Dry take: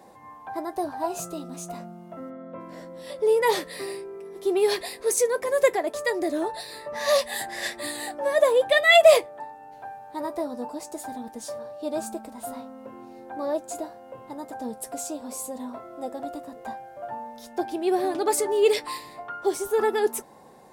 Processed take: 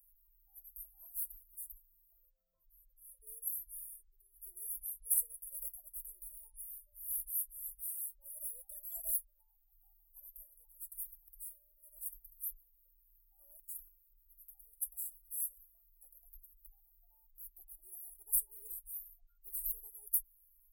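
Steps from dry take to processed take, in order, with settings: inverse Chebyshev band-stop 110–5200 Hz, stop band 60 dB; spectral gate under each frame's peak -20 dB strong; gain +11 dB

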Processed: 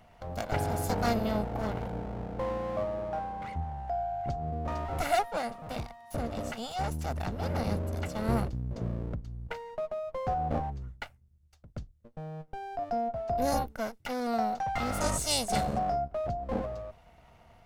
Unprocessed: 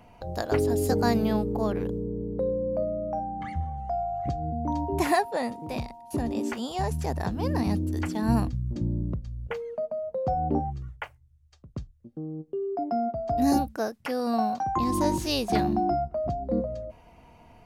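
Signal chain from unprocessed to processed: minimum comb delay 1.4 ms; 15–15.79 bell 8300 Hz +13 dB 0.86 oct; gain -3 dB

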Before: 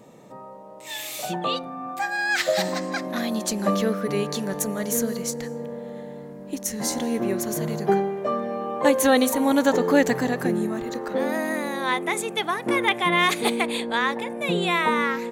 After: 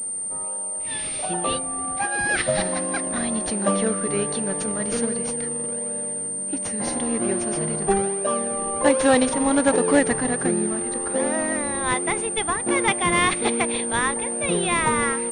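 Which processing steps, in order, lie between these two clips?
low shelf 130 Hz -9 dB; in parallel at -9 dB: decimation with a swept rate 39×, swing 100% 1.3 Hz; on the sum: pulse-width modulation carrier 8900 Hz

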